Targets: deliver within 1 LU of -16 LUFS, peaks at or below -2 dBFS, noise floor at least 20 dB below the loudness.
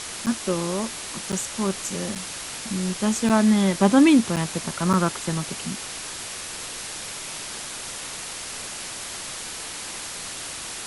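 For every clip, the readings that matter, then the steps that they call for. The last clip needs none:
dropouts 6; longest dropout 7.3 ms; noise floor -35 dBFS; noise floor target -45 dBFS; loudness -25.0 LUFS; peak -4.5 dBFS; loudness target -16.0 LUFS
-> interpolate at 0.26/1.32/2.15/3.29/4.36/4.93, 7.3 ms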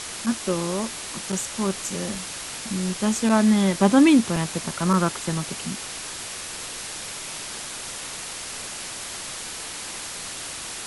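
dropouts 0; noise floor -35 dBFS; noise floor target -45 dBFS
-> denoiser 10 dB, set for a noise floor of -35 dBFS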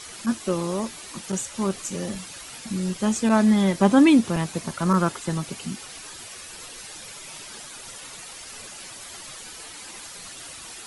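noise floor -41 dBFS; noise floor target -43 dBFS
-> denoiser 6 dB, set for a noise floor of -41 dBFS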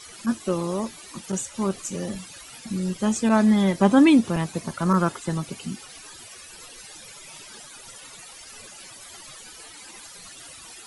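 noise floor -44 dBFS; loudness -23.0 LUFS; peak -4.5 dBFS; loudness target -16.0 LUFS
-> gain +7 dB; limiter -2 dBFS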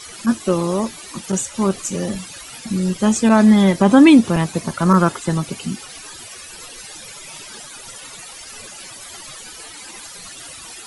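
loudness -16.5 LUFS; peak -2.0 dBFS; noise floor -37 dBFS

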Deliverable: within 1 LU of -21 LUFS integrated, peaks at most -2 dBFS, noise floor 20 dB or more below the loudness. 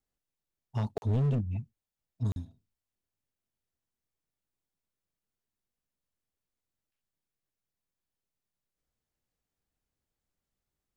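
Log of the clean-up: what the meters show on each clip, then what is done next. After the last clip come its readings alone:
clipped 0.7%; flat tops at -24.0 dBFS; dropouts 2; longest dropout 41 ms; loudness -32.5 LUFS; peak -24.0 dBFS; loudness target -21.0 LUFS
-> clip repair -24 dBFS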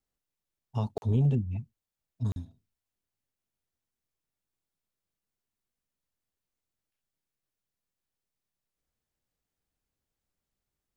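clipped 0.0%; dropouts 2; longest dropout 41 ms
-> interpolate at 0.98/2.32, 41 ms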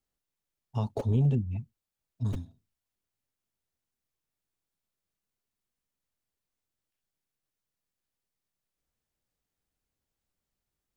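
dropouts 0; loudness -31.0 LUFS; peak -16.5 dBFS; loudness target -21.0 LUFS
-> gain +10 dB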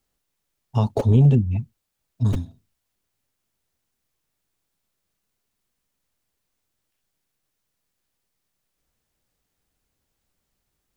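loudness -21.0 LUFS; peak -6.5 dBFS; noise floor -78 dBFS

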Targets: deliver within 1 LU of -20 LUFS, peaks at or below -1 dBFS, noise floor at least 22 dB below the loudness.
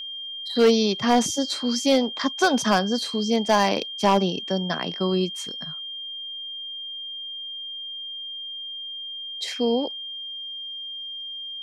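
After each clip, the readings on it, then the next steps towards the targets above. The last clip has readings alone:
clipped 0.3%; flat tops at -11.0 dBFS; steady tone 3200 Hz; tone level -32 dBFS; loudness -25.0 LUFS; peak -11.0 dBFS; loudness target -20.0 LUFS
-> clip repair -11 dBFS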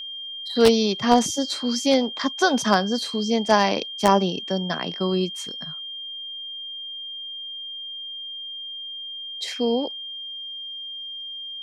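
clipped 0.0%; steady tone 3200 Hz; tone level -32 dBFS
-> notch 3200 Hz, Q 30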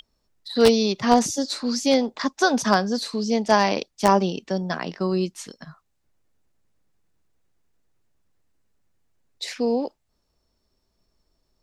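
steady tone none; loudness -22.0 LUFS; peak -1.5 dBFS; loudness target -20.0 LUFS
-> gain +2 dB; limiter -1 dBFS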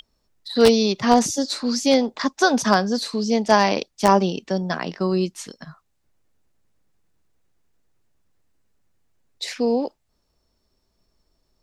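loudness -20.5 LUFS; peak -1.0 dBFS; noise floor -71 dBFS

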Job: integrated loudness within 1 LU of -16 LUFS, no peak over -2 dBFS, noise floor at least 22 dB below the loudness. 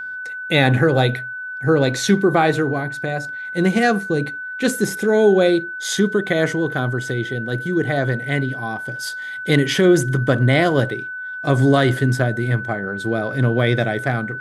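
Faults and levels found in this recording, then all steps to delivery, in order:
steady tone 1500 Hz; tone level -27 dBFS; loudness -19.0 LUFS; peak -1.5 dBFS; loudness target -16.0 LUFS
-> notch 1500 Hz, Q 30; gain +3 dB; limiter -2 dBFS

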